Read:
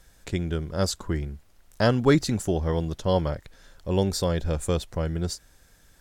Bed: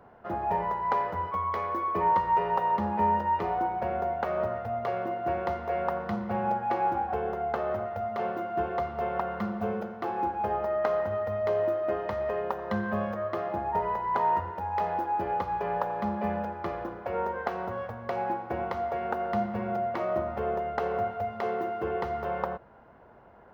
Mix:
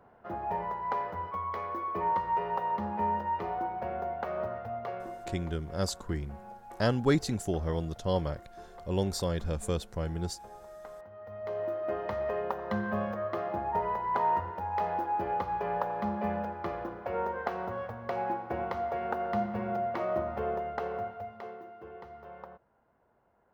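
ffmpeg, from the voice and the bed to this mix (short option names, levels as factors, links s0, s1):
-filter_complex "[0:a]adelay=5000,volume=0.501[s0];[1:a]volume=4.22,afade=t=out:st=4.71:d=0.81:silence=0.188365,afade=t=in:st=11.14:d=0.99:silence=0.133352,afade=t=out:st=20.39:d=1.23:silence=0.199526[s1];[s0][s1]amix=inputs=2:normalize=0"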